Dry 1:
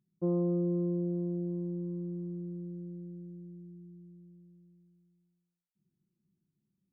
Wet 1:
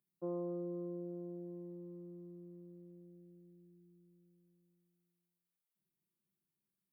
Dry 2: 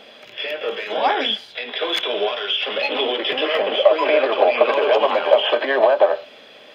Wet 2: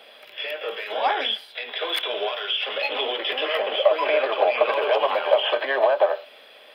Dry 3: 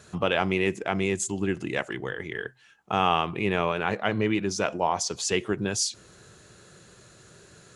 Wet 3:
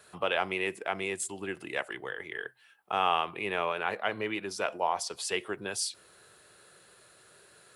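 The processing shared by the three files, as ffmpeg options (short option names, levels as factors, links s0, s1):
-filter_complex "[0:a]aexciter=amount=14.1:drive=9.1:freq=9600,acrossover=split=410 6400:gain=0.2 1 0.0708[s0][s1][s2];[s0][s1][s2]amix=inputs=3:normalize=0,volume=0.708"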